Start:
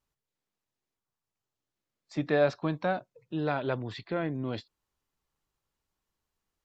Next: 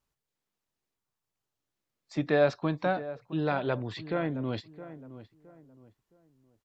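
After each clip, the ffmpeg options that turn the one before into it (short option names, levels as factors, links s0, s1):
-filter_complex "[0:a]asplit=2[s0][s1];[s1]adelay=666,lowpass=f=1400:p=1,volume=0.2,asplit=2[s2][s3];[s3]adelay=666,lowpass=f=1400:p=1,volume=0.33,asplit=2[s4][s5];[s5]adelay=666,lowpass=f=1400:p=1,volume=0.33[s6];[s0][s2][s4][s6]amix=inputs=4:normalize=0,volume=1.12"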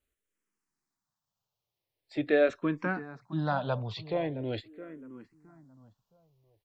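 -filter_complex "[0:a]asplit=2[s0][s1];[s1]afreqshift=-0.43[s2];[s0][s2]amix=inputs=2:normalize=1,volume=1.26"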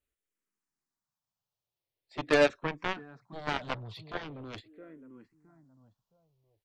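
-af "aeval=exprs='0.224*(cos(1*acos(clip(val(0)/0.224,-1,1)))-cos(1*PI/2))+0.0501*(cos(7*acos(clip(val(0)/0.224,-1,1)))-cos(7*PI/2))':c=same"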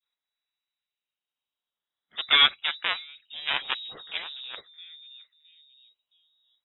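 -af "adynamicequalizer=threshold=0.00562:dfrequency=2900:dqfactor=0.86:tfrequency=2900:tqfactor=0.86:attack=5:release=100:ratio=0.375:range=3.5:mode=boostabove:tftype=bell,lowpass=f=3300:t=q:w=0.5098,lowpass=f=3300:t=q:w=0.6013,lowpass=f=3300:t=q:w=0.9,lowpass=f=3300:t=q:w=2.563,afreqshift=-3900,volume=1.41"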